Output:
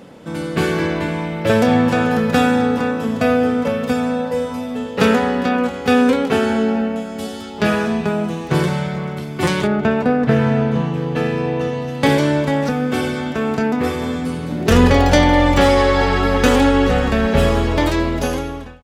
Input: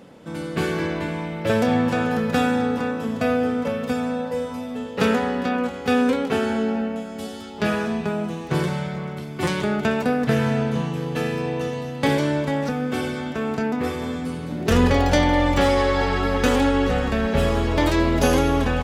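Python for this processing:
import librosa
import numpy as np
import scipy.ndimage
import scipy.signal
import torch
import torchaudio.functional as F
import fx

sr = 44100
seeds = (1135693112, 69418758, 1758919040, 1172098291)

y = fx.fade_out_tail(x, sr, length_s=1.38)
y = fx.lowpass(y, sr, hz=fx.line((9.66, 1500.0), (11.87, 3300.0)), slope=6, at=(9.66, 11.87), fade=0.02)
y = y * librosa.db_to_amplitude(5.5)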